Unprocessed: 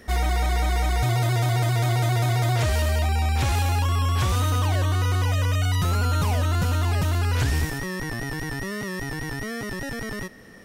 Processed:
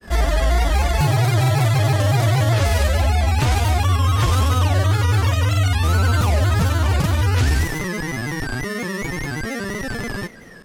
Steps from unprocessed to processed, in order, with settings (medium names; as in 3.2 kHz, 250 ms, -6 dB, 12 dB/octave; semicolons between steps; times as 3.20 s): granulator, grains 21 per s, spray 32 ms, pitch spread up and down by 3 st; trim +6.5 dB